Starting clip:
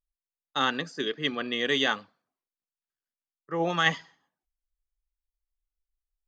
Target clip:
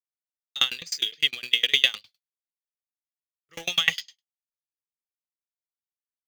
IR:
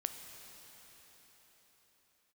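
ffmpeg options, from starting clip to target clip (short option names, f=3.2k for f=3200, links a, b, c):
-filter_complex "[0:a]agate=range=-33dB:threshold=-46dB:ratio=3:detection=peak,acrossover=split=2700[a][b];[b]acompressor=threshold=-44dB:ratio=4:attack=1:release=60[c];[a][c]amix=inputs=2:normalize=0,aexciter=amount=10.7:drive=9:freq=2.7k,asplit=2[d][e];[e]acrusher=bits=3:mix=0:aa=0.000001,volume=-7dB[f];[d][f]amix=inputs=2:normalize=0,equalizer=f=125:t=o:w=1:g=3,equalizer=f=250:t=o:w=1:g=-11,equalizer=f=1k:t=o:w=1:g=-7,equalizer=f=2k:t=o:w=1:g=10,aeval=exprs='val(0)*pow(10,-30*if(lt(mod(9.8*n/s,1),2*abs(9.8)/1000),1-mod(9.8*n/s,1)/(2*abs(9.8)/1000),(mod(9.8*n/s,1)-2*abs(9.8)/1000)/(1-2*abs(9.8)/1000))/20)':c=same,volume=-4.5dB"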